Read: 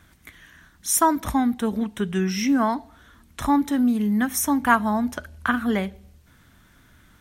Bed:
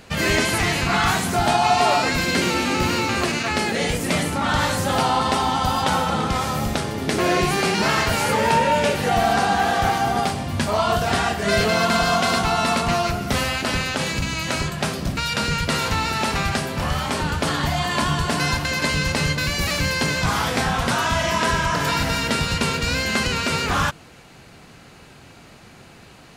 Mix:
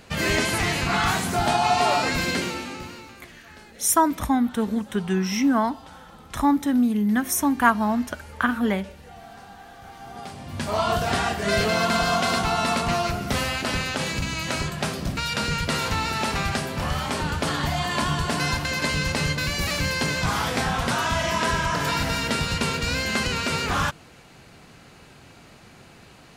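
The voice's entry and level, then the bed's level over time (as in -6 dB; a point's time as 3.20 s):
2.95 s, 0.0 dB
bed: 2.28 s -3 dB
3.24 s -25.5 dB
9.82 s -25.5 dB
10.78 s -3 dB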